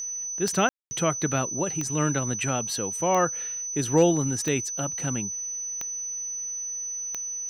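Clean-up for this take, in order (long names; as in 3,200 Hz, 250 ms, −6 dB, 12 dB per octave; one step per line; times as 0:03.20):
clipped peaks rebuilt −9 dBFS
click removal
notch filter 6,000 Hz, Q 30
ambience match 0:00.69–0:00.91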